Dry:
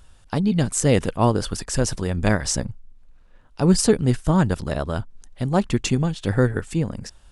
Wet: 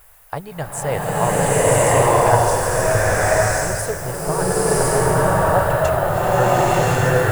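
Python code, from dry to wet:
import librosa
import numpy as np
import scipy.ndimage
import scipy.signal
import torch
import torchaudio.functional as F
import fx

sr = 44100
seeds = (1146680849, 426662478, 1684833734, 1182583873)

y = fx.rider(x, sr, range_db=10, speed_s=2.0)
y = fx.quant_dither(y, sr, seeds[0], bits=8, dither='triangular')
y = fx.curve_eq(y, sr, hz=(150.0, 220.0, 350.0, 660.0, 1900.0, 3600.0, 5800.0, 11000.0), db=(0, -17, -2, 10, 7, -4, -4, 9))
y = fx.rev_bloom(y, sr, seeds[1], attack_ms=1090, drr_db=-12.0)
y = y * 10.0 ** (-9.5 / 20.0)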